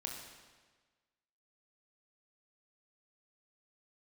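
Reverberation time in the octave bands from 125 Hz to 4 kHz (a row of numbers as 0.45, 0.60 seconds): 1.4, 1.4, 1.4, 1.4, 1.4, 1.3 seconds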